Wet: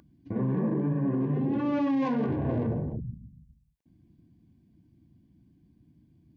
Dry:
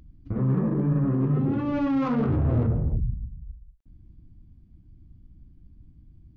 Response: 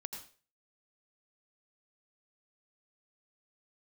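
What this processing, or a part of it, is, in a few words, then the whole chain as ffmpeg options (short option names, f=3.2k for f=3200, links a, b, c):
PA system with an anti-feedback notch: -af "highpass=180,asuperstop=centerf=1300:order=20:qfactor=5.1,alimiter=limit=-21.5dB:level=0:latency=1:release=92,volume=1.5dB"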